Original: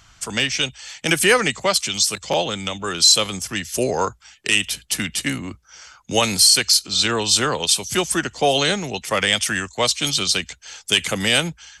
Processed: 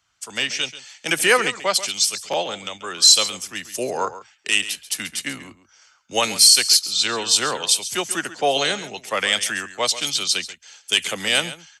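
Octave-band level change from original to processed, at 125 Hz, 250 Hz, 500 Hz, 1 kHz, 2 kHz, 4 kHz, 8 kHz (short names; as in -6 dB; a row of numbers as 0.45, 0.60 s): -11.5, -7.5, -3.0, -1.5, -1.5, -0.5, +0.5 dB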